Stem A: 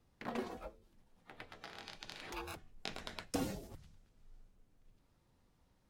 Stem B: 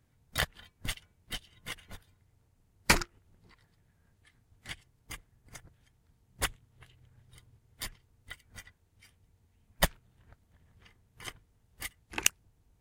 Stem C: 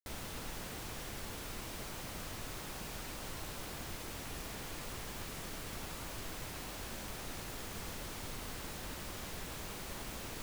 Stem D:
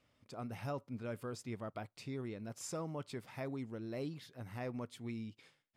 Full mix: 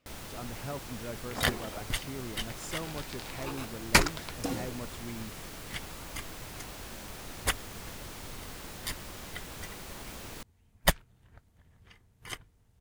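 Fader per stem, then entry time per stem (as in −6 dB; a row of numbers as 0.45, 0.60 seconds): +3.0, +2.5, +0.5, +1.5 decibels; 1.10, 1.05, 0.00, 0.00 seconds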